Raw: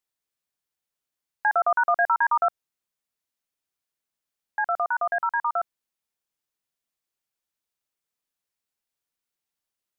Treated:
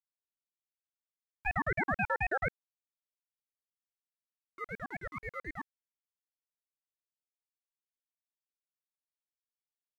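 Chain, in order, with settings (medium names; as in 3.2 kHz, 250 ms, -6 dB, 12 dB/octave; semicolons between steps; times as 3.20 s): gate -23 dBFS, range -13 dB; crossover distortion -52 dBFS; ring modulator with a swept carrier 650 Hz, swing 40%, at 4 Hz; trim -7 dB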